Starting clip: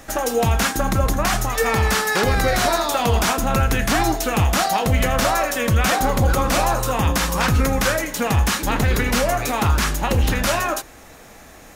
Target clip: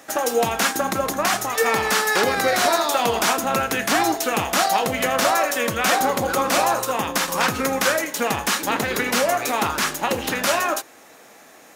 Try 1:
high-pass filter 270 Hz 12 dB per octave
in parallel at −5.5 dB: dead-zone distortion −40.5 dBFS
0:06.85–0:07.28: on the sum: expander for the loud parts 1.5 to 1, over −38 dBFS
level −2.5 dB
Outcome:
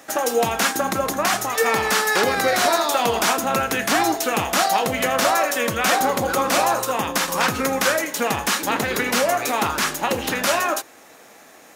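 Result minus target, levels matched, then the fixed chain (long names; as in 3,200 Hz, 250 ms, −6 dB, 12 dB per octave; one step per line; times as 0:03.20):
dead-zone distortion: distortion −8 dB
high-pass filter 270 Hz 12 dB per octave
in parallel at −5.5 dB: dead-zone distortion −32.5 dBFS
0:06.85–0:07.28: on the sum: expander for the loud parts 1.5 to 1, over −38 dBFS
level −2.5 dB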